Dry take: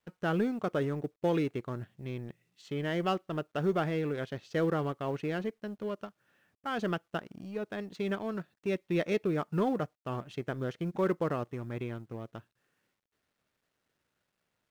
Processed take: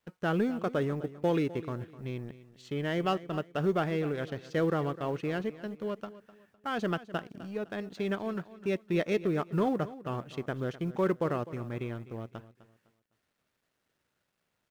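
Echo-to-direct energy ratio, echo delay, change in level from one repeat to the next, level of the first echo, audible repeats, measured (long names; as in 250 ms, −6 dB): −16.0 dB, 254 ms, −10.0 dB, −16.5 dB, 2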